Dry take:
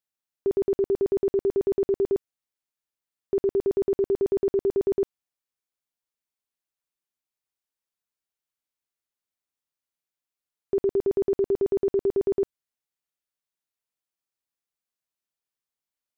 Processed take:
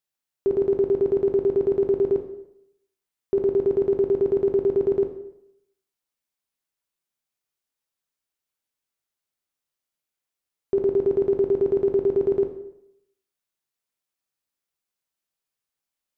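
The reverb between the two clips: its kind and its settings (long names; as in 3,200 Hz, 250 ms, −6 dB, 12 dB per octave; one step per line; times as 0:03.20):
dense smooth reverb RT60 0.76 s, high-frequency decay 0.85×, DRR 4.5 dB
level +2 dB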